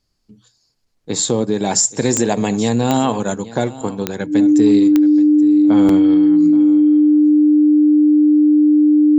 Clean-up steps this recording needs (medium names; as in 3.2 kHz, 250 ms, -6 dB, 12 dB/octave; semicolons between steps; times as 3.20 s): de-click; band-stop 300 Hz, Q 30; interpolate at 5.89 s, 3.1 ms; inverse comb 827 ms -18 dB